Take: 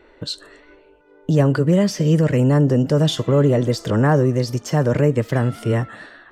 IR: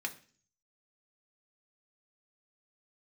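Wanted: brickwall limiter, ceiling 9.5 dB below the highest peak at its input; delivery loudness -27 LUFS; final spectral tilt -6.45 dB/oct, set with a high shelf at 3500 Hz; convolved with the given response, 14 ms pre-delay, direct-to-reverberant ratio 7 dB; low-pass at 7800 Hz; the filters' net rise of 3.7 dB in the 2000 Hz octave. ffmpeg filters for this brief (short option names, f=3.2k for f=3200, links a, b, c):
-filter_complex "[0:a]lowpass=7.8k,equalizer=f=2k:t=o:g=6,highshelf=f=3.5k:g=-5.5,alimiter=limit=-13dB:level=0:latency=1,asplit=2[a][b];[1:a]atrim=start_sample=2205,adelay=14[c];[b][c]afir=irnorm=-1:irlink=0,volume=-9dB[d];[a][d]amix=inputs=2:normalize=0,volume=-5dB"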